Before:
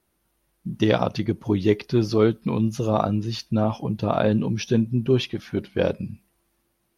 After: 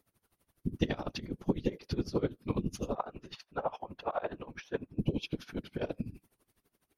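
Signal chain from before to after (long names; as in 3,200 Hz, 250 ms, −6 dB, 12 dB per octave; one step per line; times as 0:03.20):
0:02.95–0:04.99: three-way crossover with the lows and the highs turned down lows −23 dB, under 520 Hz, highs −15 dB, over 2,300 Hz
0:04.99–0:05.47: healed spectral selection 1,000–2,300 Hz both
downward compressor 5 to 1, threshold −26 dBFS, peak gain reduction 12 dB
random phases in short frames
tremolo with a sine in dB 12 Hz, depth 20 dB
level +1.5 dB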